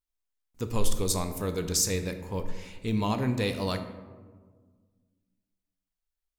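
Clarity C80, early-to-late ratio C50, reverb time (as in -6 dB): 11.5 dB, 9.5 dB, 1.6 s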